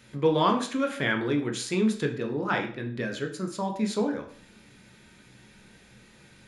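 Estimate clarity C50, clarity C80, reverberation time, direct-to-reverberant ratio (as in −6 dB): 10.0 dB, 14.0 dB, 0.50 s, 3.0 dB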